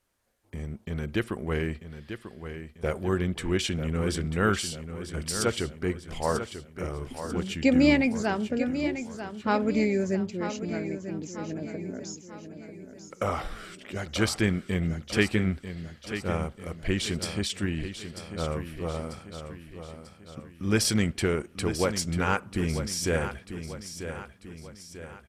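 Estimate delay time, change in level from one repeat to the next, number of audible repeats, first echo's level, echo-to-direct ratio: 942 ms, −6.5 dB, 4, −10.0 dB, −9.0 dB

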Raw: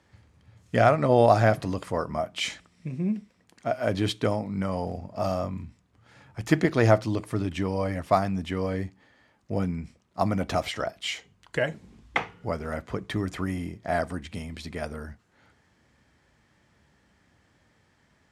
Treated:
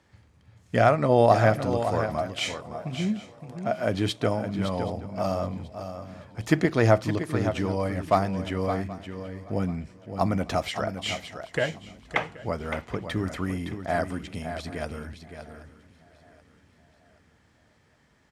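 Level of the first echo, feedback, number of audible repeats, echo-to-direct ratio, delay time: −9.0 dB, repeats not evenly spaced, 5, −8.5 dB, 565 ms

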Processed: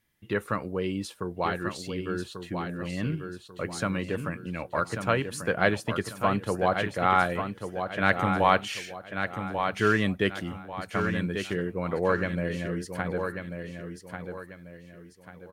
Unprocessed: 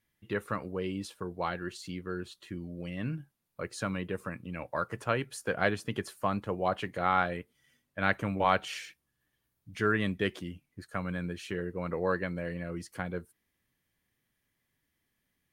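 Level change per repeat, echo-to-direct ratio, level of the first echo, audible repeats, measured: −9.0 dB, −6.5 dB, −7.0 dB, 3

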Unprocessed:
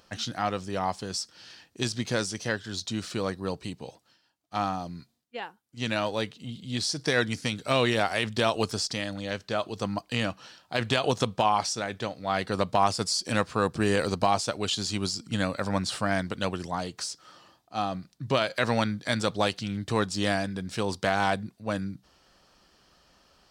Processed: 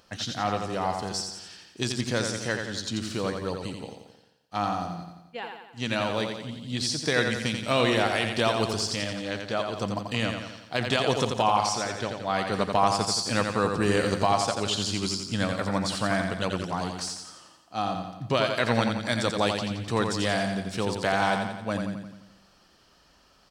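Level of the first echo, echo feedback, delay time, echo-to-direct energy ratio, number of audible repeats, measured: −5.5 dB, 54%, 87 ms, −4.0 dB, 6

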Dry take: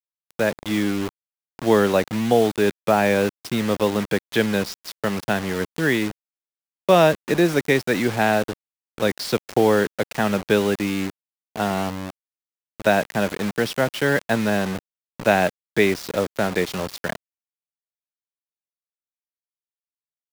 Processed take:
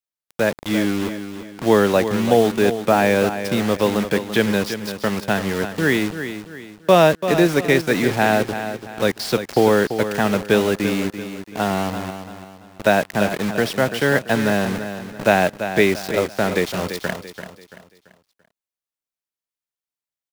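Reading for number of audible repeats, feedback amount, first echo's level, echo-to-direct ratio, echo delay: 3, 37%, −10.0 dB, −9.5 dB, 338 ms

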